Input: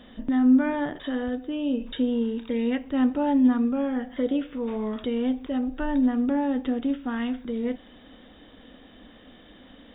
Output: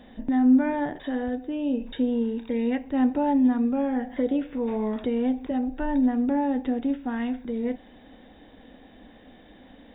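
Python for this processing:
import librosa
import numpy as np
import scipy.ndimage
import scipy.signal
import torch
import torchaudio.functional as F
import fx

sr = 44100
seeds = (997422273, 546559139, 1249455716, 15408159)

y = fx.graphic_eq_31(x, sr, hz=(800, 1250, 3150), db=(5, -8, -8))
y = fx.band_squash(y, sr, depth_pct=40, at=(3.14, 5.51))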